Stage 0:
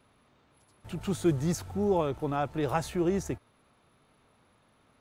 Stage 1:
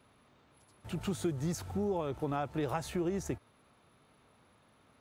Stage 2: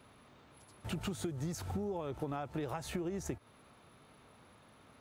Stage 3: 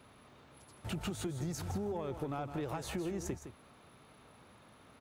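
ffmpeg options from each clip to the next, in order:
-af "acompressor=threshold=-30dB:ratio=6,highpass=43"
-af "acompressor=threshold=-39dB:ratio=10,volume=4.5dB"
-af "asoftclip=type=tanh:threshold=-28.5dB,aecho=1:1:162:0.316,volume=1dB"

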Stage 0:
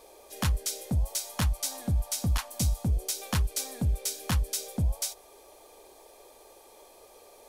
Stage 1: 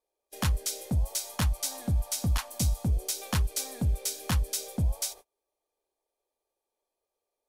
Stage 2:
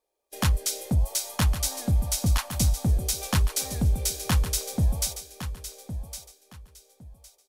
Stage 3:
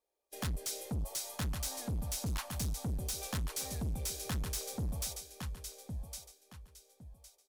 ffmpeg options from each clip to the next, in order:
-af "agate=range=-33dB:threshold=-45dB:ratio=16:detection=peak"
-af "aecho=1:1:1110|2220|3330:0.282|0.0648|0.0149,volume=4dB"
-af "asoftclip=type=tanh:threshold=-26.5dB,volume=-6dB"

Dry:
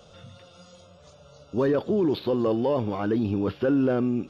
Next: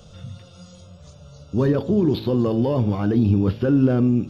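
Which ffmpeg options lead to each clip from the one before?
-af "bass=f=250:g=13,treble=f=4k:g=6,bandreject=f=54.89:t=h:w=4,bandreject=f=109.78:t=h:w=4,bandreject=f=164.67:t=h:w=4,bandreject=f=219.56:t=h:w=4,bandreject=f=274.45:t=h:w=4,bandreject=f=329.34:t=h:w=4,bandreject=f=384.23:t=h:w=4,bandreject=f=439.12:t=h:w=4,bandreject=f=494.01:t=h:w=4,bandreject=f=548.9:t=h:w=4,bandreject=f=603.79:t=h:w=4,bandreject=f=658.68:t=h:w=4,bandreject=f=713.57:t=h:w=4,bandreject=f=768.46:t=h:w=4,bandreject=f=823.35:t=h:w=4,bandreject=f=878.24:t=h:w=4,bandreject=f=933.13:t=h:w=4,bandreject=f=988.02:t=h:w=4"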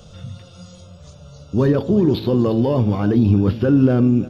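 -af "aecho=1:1:343:0.119,volume=3dB"

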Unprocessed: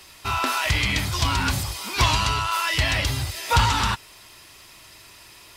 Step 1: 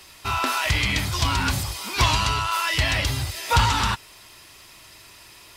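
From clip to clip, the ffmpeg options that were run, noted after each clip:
-af anull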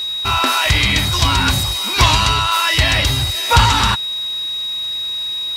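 -af "aeval=exprs='val(0)+0.0447*sin(2*PI*3800*n/s)':c=same,volume=7dB"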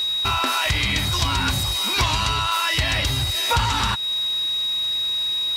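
-af "acompressor=threshold=-20dB:ratio=3"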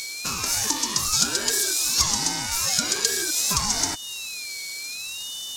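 -af "afftfilt=real='real(if(lt(b,1008),b+24*(1-2*mod(floor(b/24),2)),b),0)':imag='imag(if(lt(b,1008),b+24*(1-2*mod(floor(b/24),2)),b),0)':win_size=2048:overlap=0.75,highshelf=f=4.2k:t=q:w=3:g=12.5,aeval=exprs='val(0)*sin(2*PI*670*n/s+670*0.55/0.64*sin(2*PI*0.64*n/s))':c=same,volume=-5dB"

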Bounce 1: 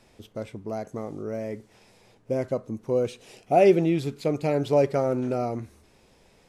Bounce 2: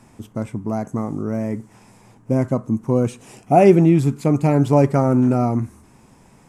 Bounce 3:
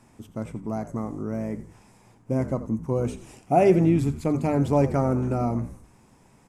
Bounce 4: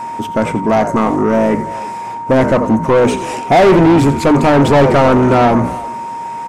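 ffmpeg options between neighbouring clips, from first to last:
-af "equalizer=f=125:t=o:w=1:g=8,equalizer=f=250:t=o:w=1:g=8,equalizer=f=500:t=o:w=1:g=-6,equalizer=f=1k:t=o:w=1:g=8,equalizer=f=4k:t=o:w=1:g=-9,equalizer=f=8k:t=o:w=1:g=7,volume=4.5dB"
-filter_complex "[0:a]bandreject=f=50:t=h:w=6,bandreject=f=100:t=h:w=6,bandreject=f=150:t=h:w=6,bandreject=f=200:t=h:w=6,bandreject=f=250:t=h:w=6,asplit=5[a][b][c][d][e];[b]adelay=86,afreqshift=-56,volume=-14dB[f];[c]adelay=172,afreqshift=-112,volume=-21.5dB[g];[d]adelay=258,afreqshift=-168,volume=-29.1dB[h];[e]adelay=344,afreqshift=-224,volume=-36.6dB[i];[a][f][g][h][i]amix=inputs=5:normalize=0,volume=-6dB"
-filter_complex "[0:a]asplit=2[a][b];[b]highpass=f=720:p=1,volume=30dB,asoftclip=type=tanh:threshold=-7dB[c];[a][c]amix=inputs=2:normalize=0,lowpass=f=2.2k:p=1,volume=-6dB,asplit=2[d][e];[e]adelay=330,highpass=300,lowpass=3.4k,asoftclip=type=hard:threshold=-15.5dB,volume=-16dB[f];[d][f]amix=inputs=2:normalize=0,aeval=exprs='val(0)+0.0447*sin(2*PI*930*n/s)':c=same,volume=5.5dB"

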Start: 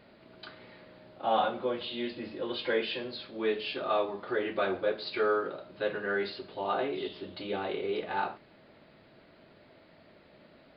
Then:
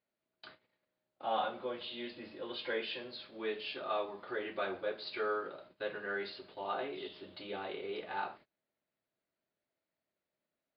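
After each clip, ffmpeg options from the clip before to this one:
-af "agate=range=-26dB:threshold=-48dB:ratio=16:detection=peak,lowshelf=f=470:g=-6,volume=-5dB"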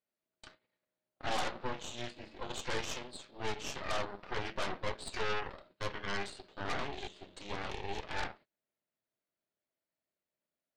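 -af "aeval=exprs='0.075*(cos(1*acos(clip(val(0)/0.075,-1,1)))-cos(1*PI/2))+0.00531*(cos(3*acos(clip(val(0)/0.075,-1,1)))-cos(3*PI/2))+0.0237*(cos(8*acos(clip(val(0)/0.075,-1,1)))-cos(8*PI/2))':c=same,volume=-2.5dB"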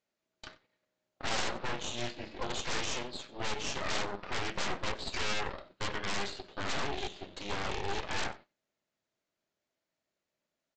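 -af "aresample=16000,aeval=exprs='0.0299*(abs(mod(val(0)/0.0299+3,4)-2)-1)':c=same,aresample=44100,aecho=1:1:93:0.0891,volume=6.5dB"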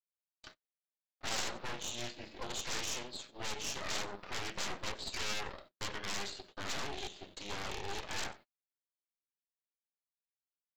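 -af "agate=range=-27dB:threshold=-49dB:ratio=16:detection=peak,aeval=exprs='0.0891*(cos(1*acos(clip(val(0)/0.0891,-1,1)))-cos(1*PI/2))+0.0224*(cos(2*acos(clip(val(0)/0.0891,-1,1)))-cos(2*PI/2))+0.00708*(cos(4*acos(clip(val(0)/0.0891,-1,1)))-cos(4*PI/2))':c=same,aemphasis=mode=production:type=50kf,volume=-6dB"

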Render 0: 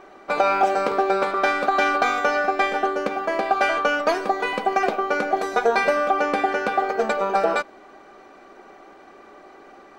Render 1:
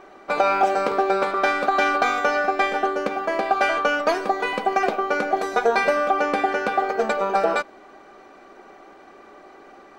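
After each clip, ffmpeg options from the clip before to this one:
-af anull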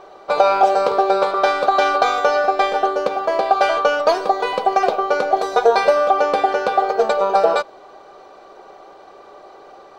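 -af "equalizer=f=125:t=o:w=1:g=6,equalizer=f=250:t=o:w=1:g=-9,equalizer=f=500:t=o:w=1:g=8,equalizer=f=1k:t=o:w=1:g=5,equalizer=f=2k:t=o:w=1:g=-6,equalizer=f=4k:t=o:w=1:g=8"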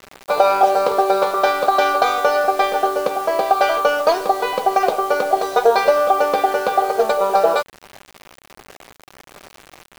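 -af "acrusher=bits=5:mix=0:aa=0.000001"

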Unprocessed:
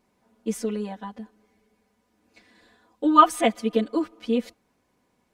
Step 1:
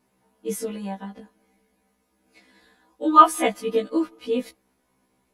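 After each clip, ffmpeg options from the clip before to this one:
-af "equalizer=f=11k:w=4.8:g=13.5,afftfilt=real='re*1.73*eq(mod(b,3),0)':imag='im*1.73*eq(mod(b,3),0)':win_size=2048:overlap=0.75,volume=2.5dB"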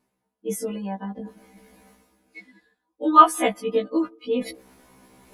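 -af "afftdn=nr=20:nf=-45,areverse,acompressor=mode=upward:threshold=-26dB:ratio=2.5,areverse"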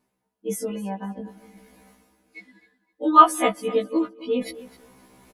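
-af "aecho=1:1:257|514:0.126|0.0277"

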